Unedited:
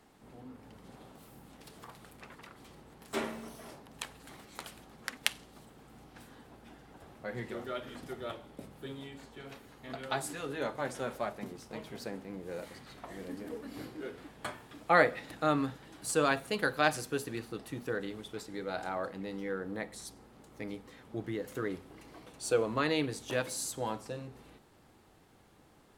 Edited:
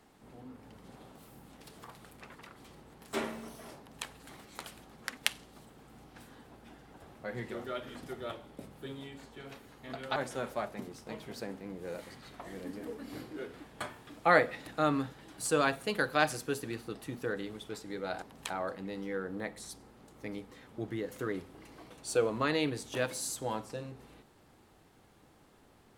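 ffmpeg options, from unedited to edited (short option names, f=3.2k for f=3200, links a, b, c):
-filter_complex "[0:a]asplit=4[a][b][c][d];[a]atrim=end=10.162[e];[b]atrim=start=10.798:end=18.862[f];[c]atrim=start=3.778:end=4.062[g];[d]atrim=start=18.858[h];[e][f]acrossfade=d=0.004:c1=hsin:c2=hsin[i];[i][g]acrossfade=d=0.004:c1=hsin:c2=hsin[j];[j][h]acrossfade=d=0.004:c1=hsin:c2=hsin"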